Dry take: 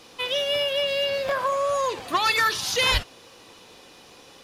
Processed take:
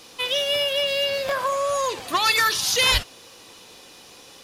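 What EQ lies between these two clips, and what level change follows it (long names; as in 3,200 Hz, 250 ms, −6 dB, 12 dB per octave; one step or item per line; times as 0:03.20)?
high-shelf EQ 4,000 Hz +8 dB
0.0 dB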